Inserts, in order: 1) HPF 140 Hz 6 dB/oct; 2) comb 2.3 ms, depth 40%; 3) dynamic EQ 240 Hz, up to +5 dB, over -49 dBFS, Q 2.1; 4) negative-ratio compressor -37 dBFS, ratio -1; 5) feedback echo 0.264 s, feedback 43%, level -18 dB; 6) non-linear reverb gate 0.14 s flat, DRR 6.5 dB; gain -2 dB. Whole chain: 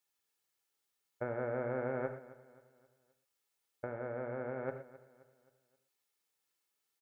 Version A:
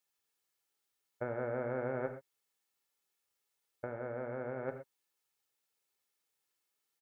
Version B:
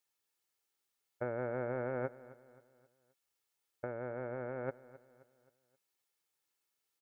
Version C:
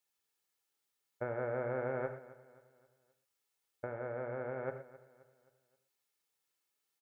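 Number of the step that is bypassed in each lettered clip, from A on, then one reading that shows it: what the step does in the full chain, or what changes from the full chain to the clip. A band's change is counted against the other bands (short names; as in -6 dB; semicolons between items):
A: 5, momentary loudness spread change -3 LU; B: 6, momentary loudness spread change +4 LU; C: 3, 250 Hz band -3.0 dB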